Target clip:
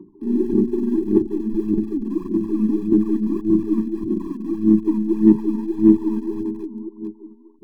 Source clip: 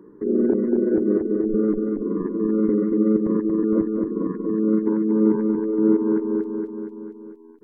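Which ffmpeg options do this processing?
-filter_complex "[0:a]lowpass=1400,aeval=exprs='0.501*(cos(1*acos(clip(val(0)/0.501,-1,1)))-cos(1*PI/2))+0.00562*(cos(4*acos(clip(val(0)/0.501,-1,1)))-cos(4*PI/2))+0.00708*(cos(5*acos(clip(val(0)/0.501,-1,1)))-cos(5*PI/2))+0.00562*(cos(7*acos(clip(val(0)/0.501,-1,1)))-cos(7*PI/2))+0.01*(cos(8*acos(clip(val(0)/0.501,-1,1)))-cos(8*PI/2))':c=same,aphaser=in_gain=1:out_gain=1:delay=4.4:decay=0.7:speed=1.7:type=sinusoidal,acrossover=split=130|960[s0][s1][s2];[s2]acrusher=bits=5:dc=4:mix=0:aa=0.000001[s3];[s0][s1][s3]amix=inputs=3:normalize=0,afftfilt=real='re*eq(mod(floor(b*sr/1024/390),2),0)':imag='im*eq(mod(floor(b*sr/1024/390),2),0)':win_size=1024:overlap=0.75,volume=0.75"

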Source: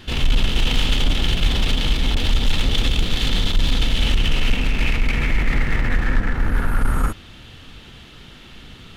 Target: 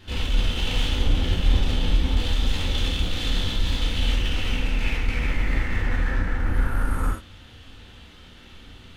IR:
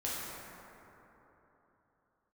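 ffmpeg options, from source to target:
-filter_complex "[0:a]asettb=1/sr,asplit=3[s0][s1][s2];[s0]atrim=end=0.924[s3];[s1]atrim=start=0.92:end=2.17,asetpts=PTS-STARTPTS,afade=t=in:d=0.004:c=qsin,afade=t=out:st=1.246:d=0.004:c=qsin,tiltshelf=f=970:g=3.5[s4];[s2]atrim=start=2.166[s5];[s3][s4]acrossfade=d=0.004:c1=hsin:c2=qsin[s6];[s6][s5]acrossfade=d=0.004:c1=qsin:c2=hsin[s7];[1:a]atrim=start_sample=2205,atrim=end_sample=3969[s8];[s7][s8]afir=irnorm=-1:irlink=0,volume=0.501"

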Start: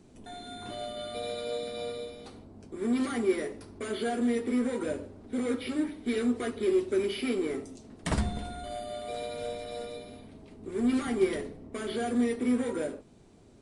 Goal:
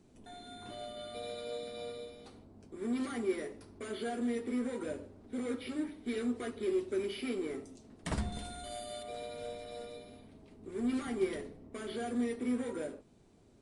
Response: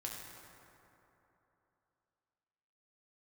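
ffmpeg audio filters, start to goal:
-filter_complex "[0:a]asettb=1/sr,asplit=3[s0][s1][s2];[s0]atrim=end=8.324[s3];[s1]atrim=start=8.32:end=9.03,asetpts=PTS-STARTPTS,afade=t=in:d=0.004:c=qsin,afade=t=out:st=0.706:d=0.004:c=qsin,highshelf=f=3200:g=11.5[s4];[s2]atrim=start=9.026[s5];[s3][s4]acrossfade=d=0.004:c1=hsin:c2=qsin[s6];[s6][s5]acrossfade=d=0.004:c1=qsin:c2=hsin,volume=0.473"

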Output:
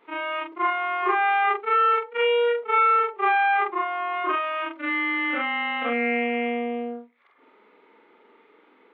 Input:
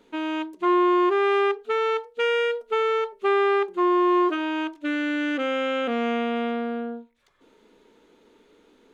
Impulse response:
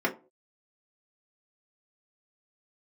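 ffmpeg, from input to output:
-af "afftfilt=real='re':imag='-im':win_size=4096:overlap=0.75,highpass=290,equalizer=f=820:t=q:w=4:g=6,equalizer=f=1200:t=q:w=4:g=9,equalizer=f=2100:t=q:w=4:g=9,lowpass=f=3100:w=0.5412,lowpass=f=3100:w=1.3066,volume=1.68"

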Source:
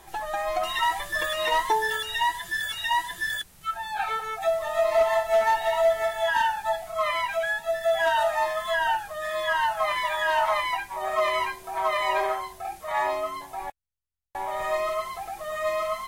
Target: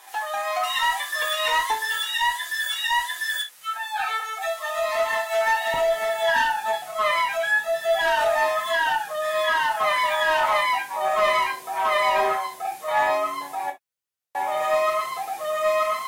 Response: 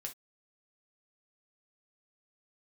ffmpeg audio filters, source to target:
-filter_complex "[0:a]asetnsamples=n=441:p=0,asendcmd='5.74 highpass f 260',highpass=850,asoftclip=type=tanh:threshold=0.126[s0];[1:a]atrim=start_sample=2205[s1];[s0][s1]afir=irnorm=-1:irlink=0,volume=2.66"

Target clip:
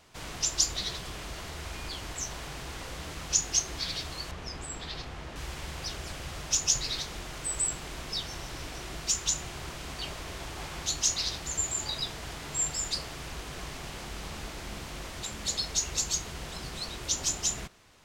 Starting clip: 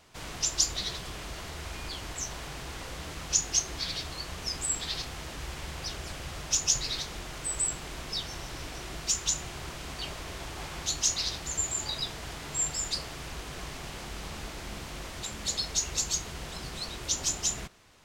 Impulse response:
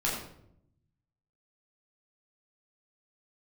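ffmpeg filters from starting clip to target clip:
-filter_complex "[0:a]asettb=1/sr,asplit=3[s0][s1][s2];[s0]atrim=end=4.314[s3];[s1]atrim=start=4.31:end=5.36,asetpts=PTS-STARTPTS,afade=t=in:d=0.004:c=qsin,afade=t=out:st=1.046:d=0.004:c=qsin,lowpass=f=2100:p=1[s4];[s2]atrim=start=5.356[s5];[s3][s4]acrossfade=d=0.004:c1=hsin:c2=qsin[s6];[s6][s5]acrossfade=d=0.004:c1=qsin:c2=hsin"

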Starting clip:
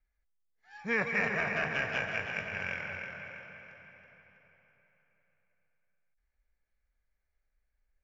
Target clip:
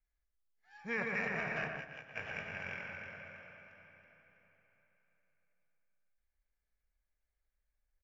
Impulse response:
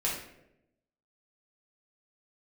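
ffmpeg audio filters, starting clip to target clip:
-filter_complex "[0:a]asplit=3[s0][s1][s2];[s0]afade=t=out:st=1.67:d=0.02[s3];[s1]agate=range=0.158:threshold=0.0355:ratio=16:detection=peak,afade=t=in:st=1.67:d=0.02,afade=t=out:st=2.15:d=0.02[s4];[s2]afade=t=in:st=2.15:d=0.02[s5];[s3][s4][s5]amix=inputs=3:normalize=0,asplit=2[s6][s7];[s7]adelay=119,lowpass=f=1900:p=1,volume=0.708,asplit=2[s8][s9];[s9]adelay=119,lowpass=f=1900:p=1,volume=0.28,asplit=2[s10][s11];[s11]adelay=119,lowpass=f=1900:p=1,volume=0.28,asplit=2[s12][s13];[s13]adelay=119,lowpass=f=1900:p=1,volume=0.28[s14];[s6][s8][s10][s12][s14]amix=inputs=5:normalize=0,volume=0.447"

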